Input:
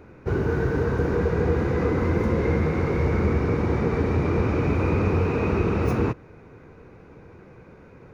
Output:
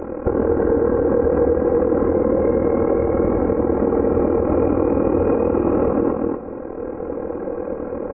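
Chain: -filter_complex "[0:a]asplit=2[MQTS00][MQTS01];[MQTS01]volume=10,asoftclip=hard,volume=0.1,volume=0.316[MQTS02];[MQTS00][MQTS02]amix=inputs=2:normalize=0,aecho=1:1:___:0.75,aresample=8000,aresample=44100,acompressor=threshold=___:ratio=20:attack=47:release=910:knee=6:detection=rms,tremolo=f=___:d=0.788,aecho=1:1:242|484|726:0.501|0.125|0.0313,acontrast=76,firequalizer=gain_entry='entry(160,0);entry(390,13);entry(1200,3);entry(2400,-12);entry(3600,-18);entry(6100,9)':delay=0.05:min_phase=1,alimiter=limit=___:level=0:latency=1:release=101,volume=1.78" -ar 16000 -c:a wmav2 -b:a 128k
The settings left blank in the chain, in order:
3.7, 0.0447, 40, 0.224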